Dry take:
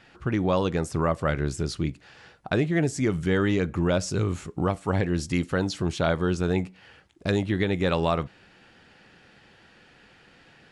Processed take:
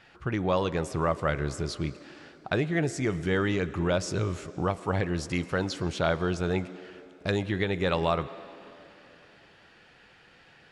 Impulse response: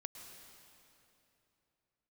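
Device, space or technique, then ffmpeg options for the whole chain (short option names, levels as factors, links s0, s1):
filtered reverb send: -filter_complex "[0:a]asplit=2[s0][s1];[s1]highpass=f=230:w=0.5412,highpass=f=230:w=1.3066,lowpass=6600[s2];[1:a]atrim=start_sample=2205[s3];[s2][s3]afir=irnorm=-1:irlink=0,volume=0.631[s4];[s0][s4]amix=inputs=2:normalize=0,volume=0.668"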